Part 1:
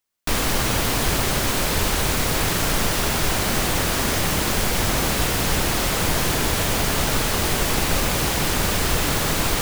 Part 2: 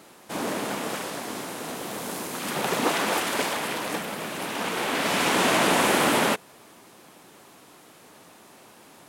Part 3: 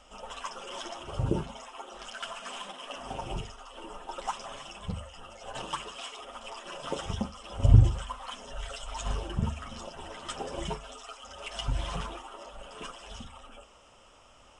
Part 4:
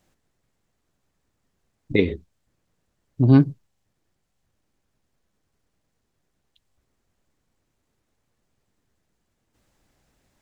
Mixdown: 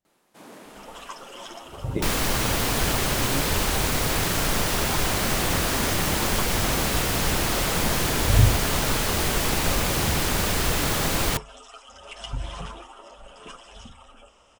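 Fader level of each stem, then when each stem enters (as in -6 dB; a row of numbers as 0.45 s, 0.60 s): -2.5 dB, -16.0 dB, -0.5 dB, -18.0 dB; 1.75 s, 0.05 s, 0.65 s, 0.00 s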